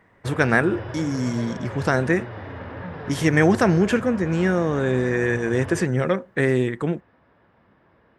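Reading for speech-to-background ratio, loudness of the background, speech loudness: 13.0 dB, -35.0 LUFS, -22.0 LUFS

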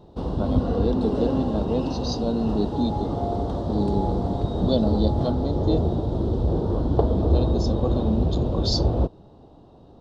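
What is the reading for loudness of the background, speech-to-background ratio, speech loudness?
-25.0 LUFS, -3.5 dB, -28.5 LUFS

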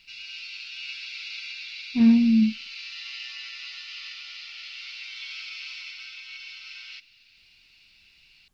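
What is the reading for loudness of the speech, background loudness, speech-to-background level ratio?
-20.0 LUFS, -36.5 LUFS, 16.5 dB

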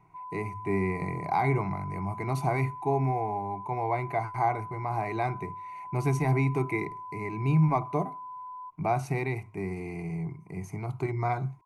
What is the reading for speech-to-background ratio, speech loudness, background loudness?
11.0 dB, -30.5 LUFS, -41.5 LUFS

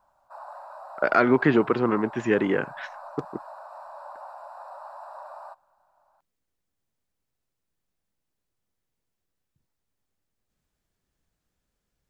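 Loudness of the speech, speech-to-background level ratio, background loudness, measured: -23.0 LUFS, 19.5 dB, -42.5 LUFS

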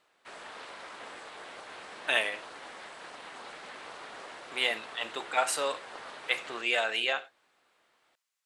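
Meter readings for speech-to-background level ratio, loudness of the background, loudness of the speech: 14.0 dB, -44.5 LUFS, -30.5 LUFS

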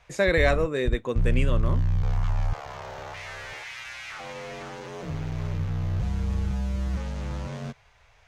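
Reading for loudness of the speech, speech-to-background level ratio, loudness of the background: -26.0 LUFS, 5.0 dB, -31.0 LUFS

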